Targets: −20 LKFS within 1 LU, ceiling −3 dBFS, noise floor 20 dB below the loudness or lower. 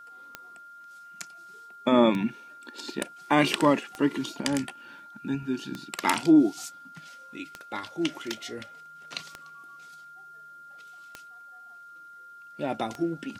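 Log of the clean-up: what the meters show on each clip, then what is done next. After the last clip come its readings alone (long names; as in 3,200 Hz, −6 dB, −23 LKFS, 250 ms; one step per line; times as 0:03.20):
number of clicks 8; interfering tone 1,400 Hz; level of the tone −45 dBFS; integrated loudness −27.0 LKFS; sample peak −6.5 dBFS; target loudness −20.0 LKFS
→ click removal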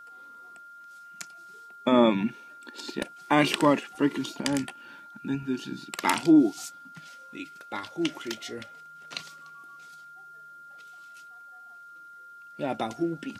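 number of clicks 0; interfering tone 1,400 Hz; level of the tone −45 dBFS
→ notch filter 1,400 Hz, Q 30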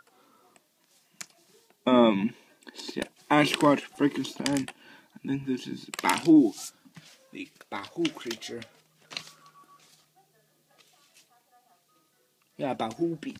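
interfering tone none found; integrated loudness −27.0 LKFS; sample peak −6.5 dBFS; target loudness −20.0 LKFS
→ level +7 dB
brickwall limiter −3 dBFS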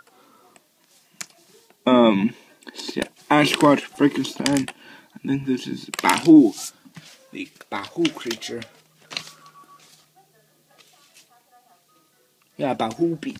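integrated loudness −20.5 LKFS; sample peak −3.0 dBFS; background noise floor −62 dBFS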